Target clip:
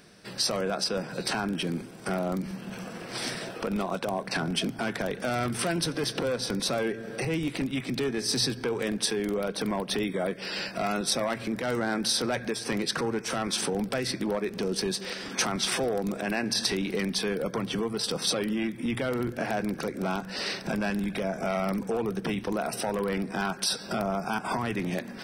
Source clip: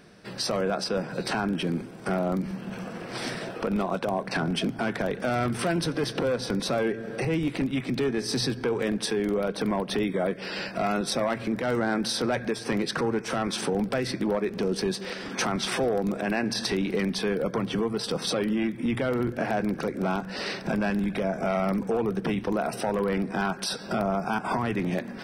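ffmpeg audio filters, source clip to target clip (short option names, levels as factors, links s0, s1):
-af "highshelf=f=3300:g=9,volume=0.708"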